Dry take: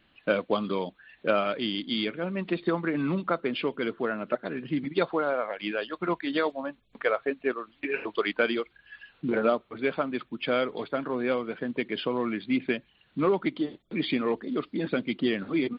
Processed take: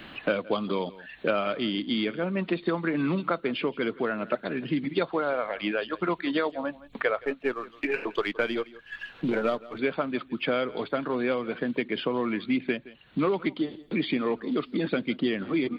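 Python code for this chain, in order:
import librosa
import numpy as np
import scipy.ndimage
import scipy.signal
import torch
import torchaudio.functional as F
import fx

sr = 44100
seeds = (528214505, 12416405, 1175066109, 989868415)

y = fx.halfwave_gain(x, sr, db=-3.0, at=(7.21, 9.79))
y = y + 10.0 ** (-22.0 / 20.0) * np.pad(y, (int(167 * sr / 1000.0), 0))[:len(y)]
y = fx.band_squash(y, sr, depth_pct=70)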